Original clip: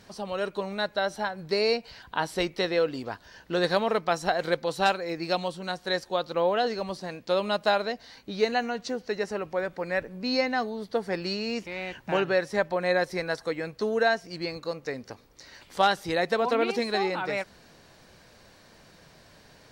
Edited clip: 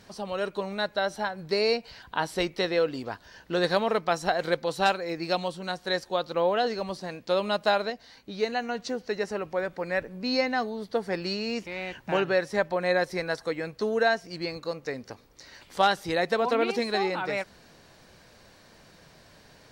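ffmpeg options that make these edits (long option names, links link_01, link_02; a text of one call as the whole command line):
ffmpeg -i in.wav -filter_complex "[0:a]asplit=3[link_01][link_02][link_03];[link_01]atrim=end=7.902[link_04];[link_02]atrim=start=7.898:end=8.692,asetpts=PTS-STARTPTS,volume=-3dB[link_05];[link_03]atrim=start=8.688[link_06];[link_04][link_05]acrossfade=duration=0.004:curve1=hsin:curve2=hsin[link_07];[link_07][link_06]acrossfade=duration=0.004:curve1=hsin:curve2=hsin" out.wav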